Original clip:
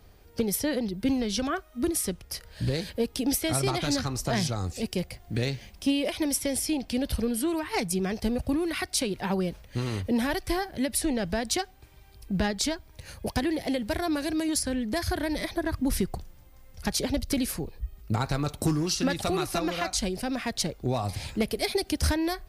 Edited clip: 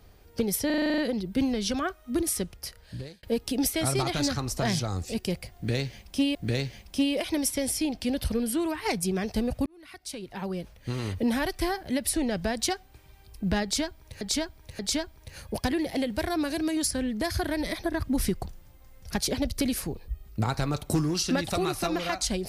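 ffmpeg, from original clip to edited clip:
-filter_complex "[0:a]asplit=14[s0][s1][s2][s3][s4][s5][s6][s7][s8][s9][s10][s11][s12][s13];[s0]atrim=end=0.702[s14];[s1]atrim=start=0.658:end=0.702[s15];[s2]atrim=start=0.658:end=0.702[s16];[s3]atrim=start=0.658:end=0.702[s17];[s4]atrim=start=0.658:end=0.702[s18];[s5]atrim=start=0.658:end=0.702[s19];[s6]atrim=start=0.658:end=0.702[s20];[s7]atrim=start=0.658:end=0.702[s21];[s8]atrim=start=0.658:end=2.91,asetpts=PTS-STARTPTS,afade=t=out:st=1.532:d=0.72[s22];[s9]atrim=start=2.91:end=6.032,asetpts=PTS-STARTPTS,afade=t=in:d=0.004:c=hsin[s23];[s10]atrim=start=5.228:end=8.54,asetpts=PTS-STARTPTS,afade=t=out:st=3.308:d=0.004:c=hsin[s24];[s11]atrim=start=8.54:end=13.092,asetpts=PTS-STARTPTS,afade=t=in:d=1.55[s25];[s12]atrim=start=12.508:end=13.092[s26];[s13]atrim=start=12.508[s27];[s14][s15]acrossfade=d=0.004:c1=hsin:c2=hsin[s28];[s28][s16]acrossfade=d=0.004:c1=hsin:c2=hsin[s29];[s29][s17]acrossfade=d=0.004:c1=hsin:c2=hsin[s30];[s30][s18]acrossfade=d=0.004:c1=hsin:c2=hsin[s31];[s31][s19]acrossfade=d=0.004:c1=hsin:c2=hsin[s32];[s32][s20]acrossfade=d=0.004:c1=hsin:c2=hsin[s33];[s33][s21]acrossfade=d=0.004:c1=hsin:c2=hsin[s34];[s22][s23]concat=n=2:v=0:a=1[s35];[s34][s35]acrossfade=d=0.004:c1=hsin:c2=hsin[s36];[s24][s25]concat=n=2:v=0:a=1[s37];[s36][s37]acrossfade=d=0.004:c1=hsin:c2=hsin[s38];[s38][s26]acrossfade=d=0.004:c1=hsin:c2=hsin[s39];[s39][s27]acrossfade=d=0.004:c1=hsin:c2=hsin"

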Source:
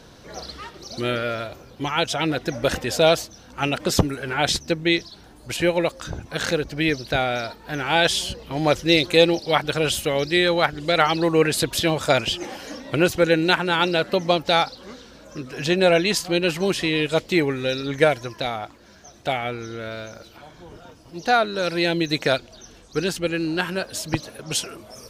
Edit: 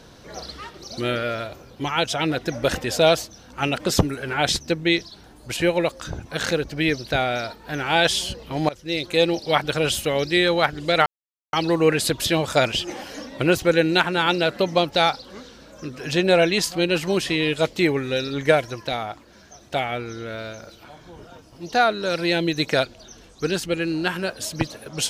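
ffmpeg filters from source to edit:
-filter_complex "[0:a]asplit=3[s0][s1][s2];[s0]atrim=end=8.69,asetpts=PTS-STARTPTS,afade=t=out:st=8.686:d=0.004:c=hsin:silence=0.0944061[s3];[s1]atrim=start=8.69:end=11.06,asetpts=PTS-STARTPTS,afade=t=in:d=0.81:silence=0.0944061,afade=t=out:st=2.366:d=0.004:c=hsin,apad=pad_dur=0.47[s4];[s2]atrim=start=11.06,asetpts=PTS-STARTPTS,afade=t=in:d=0.004:c=hsin[s5];[s3][s4][s5]concat=n=3:v=0:a=1"

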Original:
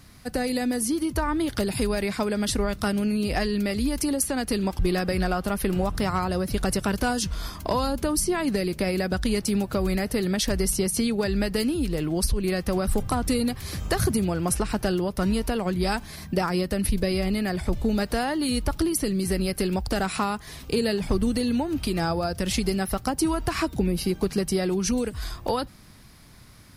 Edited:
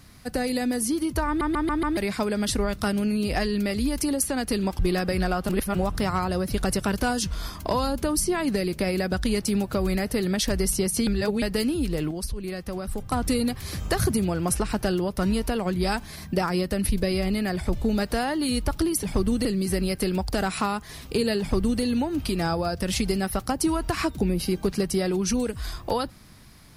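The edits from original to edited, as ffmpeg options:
-filter_complex "[0:a]asplit=14[s0][s1][s2][s3][s4][s5][s6][s7][s8][s9][s10][s11][s12][s13];[s0]atrim=end=1.412[s14];[s1]atrim=start=1.268:end=1.412[s15];[s2]atrim=start=1.268:end=1.412[s16];[s3]atrim=start=1.268:end=1.412[s17];[s4]atrim=start=1.268:end=1.412[s18];[s5]atrim=start=1.968:end=5.492[s19];[s6]atrim=start=5.488:end=5.752,asetpts=PTS-STARTPTS,areverse[s20];[s7]atrim=start=5.748:end=11.072[s21];[s8]atrim=start=11.068:end=11.422,asetpts=PTS-STARTPTS,areverse[s22];[s9]atrim=start=11.418:end=12.112[s23];[s10]atrim=start=12.108:end=13.122,asetpts=PTS-STARTPTS,volume=0.447[s24];[s11]atrim=start=13.118:end=19.032[s25];[s12]atrim=start=20.978:end=21.402[s26];[s13]atrim=start=19.028[s27];[s14][s15]acrossfade=d=0.004:c1=hsin:c2=hsin[s28];[s28][s16]acrossfade=d=0.004:c1=hsin:c2=hsin[s29];[s29][s17]acrossfade=d=0.004:c1=hsin:c2=hsin[s30];[s30][s18]acrossfade=d=0.004:c1=hsin:c2=hsin[s31];[s31][s19]acrossfade=d=0.004:c1=hsin:c2=hsin[s32];[s32][s20]acrossfade=d=0.004:c1=hsin:c2=hsin[s33];[s33][s21]acrossfade=d=0.004:c1=hsin:c2=hsin[s34];[s34][s22]acrossfade=d=0.004:c1=hsin:c2=hsin[s35];[s35][s23]acrossfade=d=0.004:c1=hsin:c2=hsin[s36];[s36][s24]acrossfade=d=0.004:c1=hsin:c2=hsin[s37];[s37][s25]acrossfade=d=0.004:c1=hsin:c2=hsin[s38];[s38][s26]acrossfade=d=0.004:c1=hsin:c2=hsin[s39];[s39][s27]acrossfade=d=0.004:c1=hsin:c2=hsin"

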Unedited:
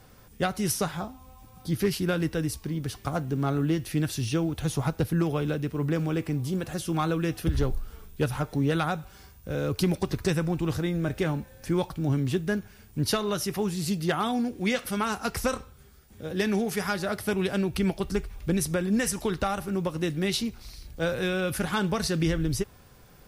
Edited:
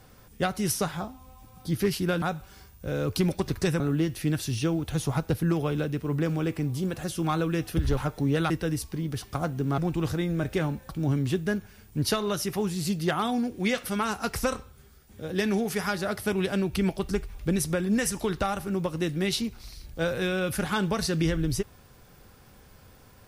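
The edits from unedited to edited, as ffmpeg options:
-filter_complex "[0:a]asplit=7[s0][s1][s2][s3][s4][s5][s6];[s0]atrim=end=2.222[s7];[s1]atrim=start=8.848:end=10.432[s8];[s2]atrim=start=3.498:end=7.672[s9];[s3]atrim=start=8.318:end=8.852[s10];[s4]atrim=start=2.218:end=3.502[s11];[s5]atrim=start=10.428:end=11.542[s12];[s6]atrim=start=11.898[s13];[s7][s8]acrossfade=d=0.004:c1=hsin:c2=hsin[s14];[s14][s9]acrossfade=d=0.004:c1=hsin:c2=hsin[s15];[s15][s10]acrossfade=d=0.004:c1=hsin:c2=hsin[s16];[s16][s11]acrossfade=d=0.004:c1=hsin:c2=hsin[s17];[s17][s12]acrossfade=d=0.004:c1=hsin:c2=hsin[s18];[s18][s13]acrossfade=d=0.004:c1=hsin:c2=hsin"

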